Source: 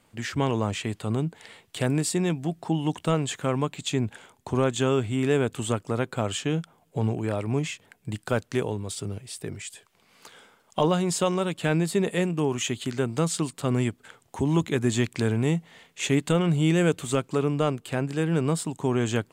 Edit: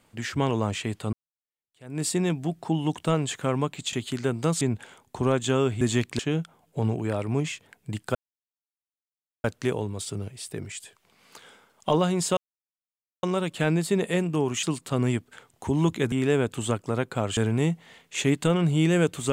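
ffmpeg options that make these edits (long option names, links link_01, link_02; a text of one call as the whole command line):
ffmpeg -i in.wav -filter_complex "[0:a]asplit=11[link_01][link_02][link_03][link_04][link_05][link_06][link_07][link_08][link_09][link_10][link_11];[link_01]atrim=end=1.13,asetpts=PTS-STARTPTS,afade=type=out:start_time=1.126:duration=0.004:curve=hsin[link_12];[link_02]atrim=start=1.13:end=3.932,asetpts=PTS-STARTPTS,afade=type=in:duration=0.9:curve=exp[link_13];[link_03]atrim=start=12.668:end=13.352[link_14];[link_04]atrim=start=3.928:end=5.132[link_15];[link_05]atrim=start=14.838:end=15.222[link_16];[link_06]atrim=start=6.378:end=8.34,asetpts=PTS-STARTPTS,afade=type=out:start_time=1.958:duration=0.004:curve=hsin,apad=pad_dur=1.29[link_17];[link_07]atrim=start=8.34:end=11.27,asetpts=PTS-STARTPTS,afade=type=in:duration=0.004:curve=hsin,afade=type=out:start_time=2.926:duration=0.004:curve=hsin,apad=pad_dur=0.86[link_18];[link_08]atrim=start=11.27:end=12.672,asetpts=PTS-STARTPTS,afade=type=in:duration=0.004:curve=hsin[link_19];[link_09]atrim=start=13.348:end=14.842[link_20];[link_10]atrim=start=5.128:end=6.382[link_21];[link_11]atrim=start=15.218[link_22];[link_12][link_13]concat=n=2:v=0:a=1[link_23];[link_23][link_14]acrossfade=duration=0.004:curve1=hsin:curve2=hsin[link_24];[link_24][link_15]acrossfade=duration=0.004:curve1=hsin:curve2=hsin[link_25];[link_25][link_16]acrossfade=duration=0.004:curve1=hsin:curve2=hsin[link_26];[link_17][link_18][link_19]concat=n=3:v=0:a=1[link_27];[link_26][link_27]acrossfade=duration=0.004:curve1=hsin:curve2=hsin[link_28];[link_28][link_20]acrossfade=duration=0.004:curve1=hsin:curve2=hsin[link_29];[link_29][link_21]acrossfade=duration=0.004:curve1=hsin:curve2=hsin[link_30];[link_30][link_22]acrossfade=duration=0.004:curve1=hsin:curve2=hsin" out.wav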